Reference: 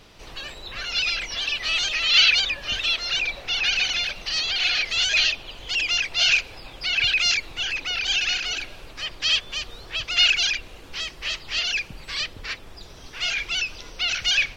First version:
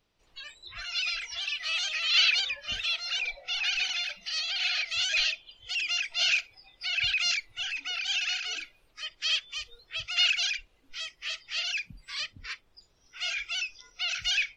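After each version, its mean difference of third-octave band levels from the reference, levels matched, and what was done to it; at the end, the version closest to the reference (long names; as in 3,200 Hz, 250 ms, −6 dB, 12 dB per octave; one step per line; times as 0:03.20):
8.5 dB: noise reduction from a noise print of the clip's start 18 dB
level −6.5 dB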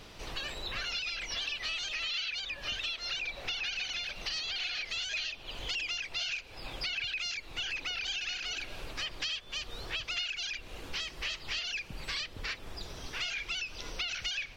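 5.0 dB: downward compressor 10 to 1, threshold −33 dBFS, peak gain reduction 21 dB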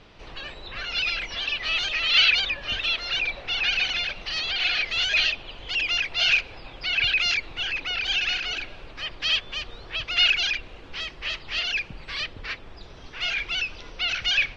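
3.5 dB: low-pass filter 3,600 Hz 12 dB per octave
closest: third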